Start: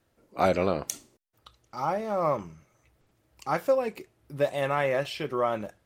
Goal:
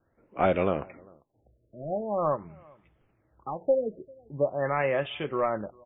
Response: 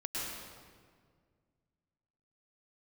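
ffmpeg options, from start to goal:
-filter_complex "[0:a]acrossover=split=860|1300[s0][s1][s2];[s1]aeval=exprs='clip(val(0),-1,0.0168)':c=same[s3];[s0][s3][s2]amix=inputs=3:normalize=0,asplit=2[s4][s5];[s5]adelay=396.5,volume=0.0447,highshelf=f=4000:g=-8.92[s6];[s4][s6]amix=inputs=2:normalize=0,asplit=3[s7][s8][s9];[s7]afade=t=out:st=2.35:d=0.02[s10];[s8]acompressor=threshold=0.0251:ratio=3,afade=t=in:st=2.35:d=0.02,afade=t=out:st=3.6:d=0.02[s11];[s9]afade=t=in:st=3.6:d=0.02[s12];[s10][s11][s12]amix=inputs=3:normalize=0,afftfilt=real='re*lt(b*sr/1024,660*pow(3700/660,0.5+0.5*sin(2*PI*0.44*pts/sr)))':imag='im*lt(b*sr/1024,660*pow(3700/660,0.5+0.5*sin(2*PI*0.44*pts/sr)))':win_size=1024:overlap=0.75"

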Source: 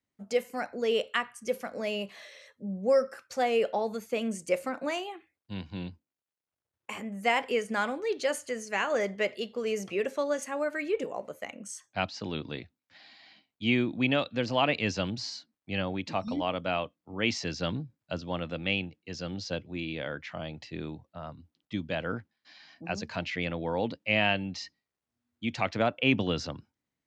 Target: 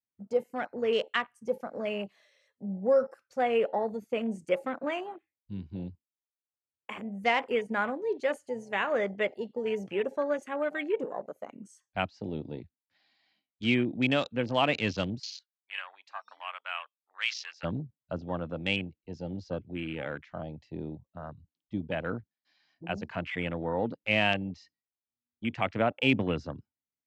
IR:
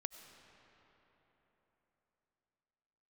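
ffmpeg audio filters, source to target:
-filter_complex "[0:a]afwtdn=0.0126,asplit=3[s0][s1][s2];[s0]afade=t=out:st=15.18:d=0.02[s3];[s1]highpass=f=1100:w=0.5412,highpass=f=1100:w=1.3066,afade=t=in:st=15.18:d=0.02,afade=t=out:st=17.63:d=0.02[s4];[s2]afade=t=in:st=17.63:d=0.02[s5];[s3][s4][s5]amix=inputs=3:normalize=0"

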